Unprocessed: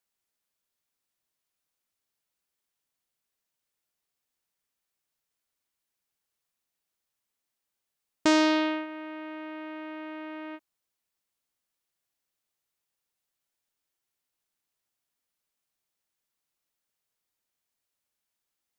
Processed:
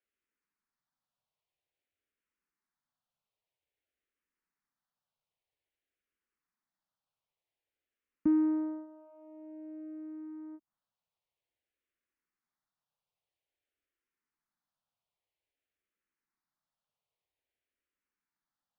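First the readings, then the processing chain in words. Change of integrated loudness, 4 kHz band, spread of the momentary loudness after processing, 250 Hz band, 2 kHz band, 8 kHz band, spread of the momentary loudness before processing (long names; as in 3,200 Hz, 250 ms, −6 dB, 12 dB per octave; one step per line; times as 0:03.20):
−4.5 dB, below −40 dB, 21 LU, −3.0 dB, below −25 dB, below −30 dB, 17 LU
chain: treble cut that deepens with the level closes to 370 Hz
low-pass filter 2,800 Hz 12 dB per octave
frequency shifter mixed with the dry sound −0.51 Hz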